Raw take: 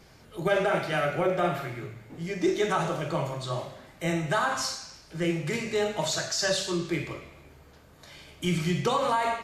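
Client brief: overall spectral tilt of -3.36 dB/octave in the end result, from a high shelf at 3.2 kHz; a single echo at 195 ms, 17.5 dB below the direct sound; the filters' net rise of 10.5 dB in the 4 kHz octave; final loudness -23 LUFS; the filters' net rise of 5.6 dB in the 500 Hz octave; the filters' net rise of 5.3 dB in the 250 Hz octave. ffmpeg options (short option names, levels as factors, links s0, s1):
-af "equalizer=f=250:t=o:g=6.5,equalizer=f=500:t=o:g=5,highshelf=f=3200:g=8.5,equalizer=f=4000:t=o:g=6.5,aecho=1:1:195:0.133,volume=0.891"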